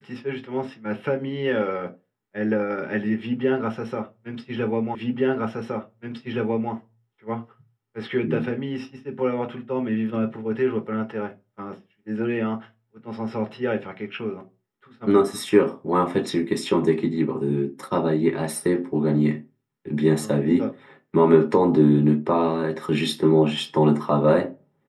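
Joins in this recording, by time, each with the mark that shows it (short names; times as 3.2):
4.95 repeat of the last 1.77 s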